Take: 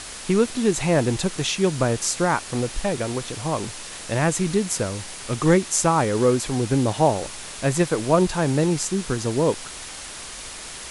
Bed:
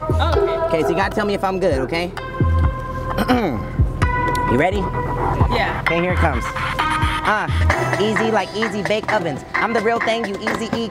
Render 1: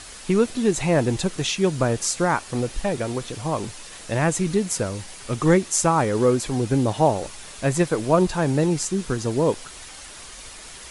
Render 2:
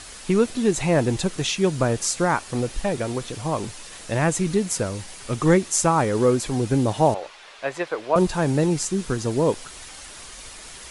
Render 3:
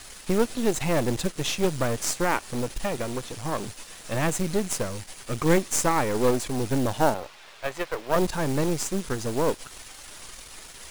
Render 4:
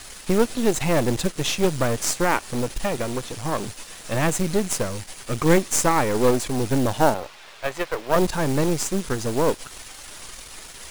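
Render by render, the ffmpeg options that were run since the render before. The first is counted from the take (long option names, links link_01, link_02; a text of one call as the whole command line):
ffmpeg -i in.wav -af "afftdn=noise_reduction=6:noise_floor=-37" out.wav
ffmpeg -i in.wav -filter_complex "[0:a]asettb=1/sr,asplit=3[link_01][link_02][link_03];[link_01]atrim=end=7.144[link_04];[link_02]atrim=start=7.14:end=8.16,asetpts=PTS-STARTPTS,afade=type=in:duration=0.004:curve=qsin,afade=type=out:start_time=1.016:duration=0.004:curve=qsin,acrossover=split=420 4400:gain=0.0794 1 0.1[link_05][link_06][link_07];[link_05][link_06][link_07]amix=inputs=3:normalize=0[link_08];[link_03]atrim=start=8.156[link_09];[link_04][link_08]acrossfade=duration=0.004:curve1=hsin:curve2=qsin[link_10];[link_10][link_09]acrossfade=duration=0.004:curve1=qsin:curve2=hsin" out.wav
ffmpeg -i in.wav -af "aeval=exprs='if(lt(val(0),0),0.251*val(0),val(0))':channel_layout=same,acrusher=bits=4:mode=log:mix=0:aa=0.000001" out.wav
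ffmpeg -i in.wav -af "volume=3.5dB" out.wav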